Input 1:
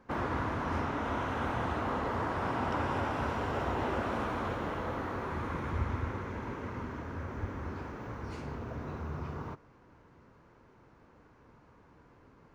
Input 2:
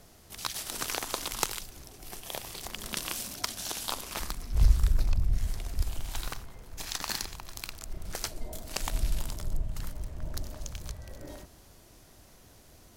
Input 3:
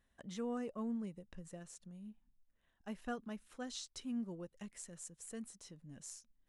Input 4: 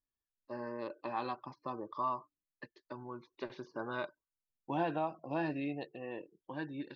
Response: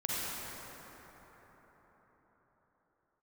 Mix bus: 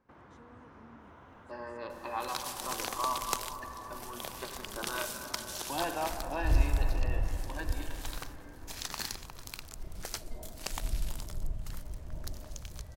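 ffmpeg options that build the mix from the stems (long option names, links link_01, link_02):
-filter_complex "[0:a]acompressor=threshold=-47dB:ratio=2.5,volume=-16.5dB,asplit=2[link_01][link_02];[link_02]volume=-3.5dB[link_03];[1:a]adelay=1900,volume=-4dB[link_04];[2:a]volume=-18dB[link_05];[3:a]highpass=frequency=810:poles=1,adelay=1000,volume=1.5dB,asplit=2[link_06][link_07];[link_07]volume=-8.5dB[link_08];[4:a]atrim=start_sample=2205[link_09];[link_03][link_08]amix=inputs=2:normalize=0[link_10];[link_10][link_09]afir=irnorm=-1:irlink=0[link_11];[link_01][link_04][link_05][link_06][link_11]amix=inputs=5:normalize=0"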